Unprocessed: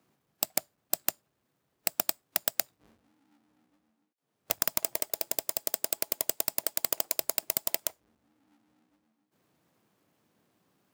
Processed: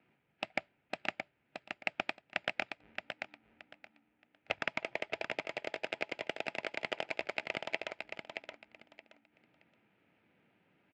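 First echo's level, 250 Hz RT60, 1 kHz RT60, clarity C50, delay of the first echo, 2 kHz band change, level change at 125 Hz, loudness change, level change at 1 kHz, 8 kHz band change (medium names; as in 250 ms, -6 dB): -6.0 dB, no reverb, no reverb, no reverb, 623 ms, +6.0 dB, -0.5 dB, -9.5 dB, 0.0 dB, -28.0 dB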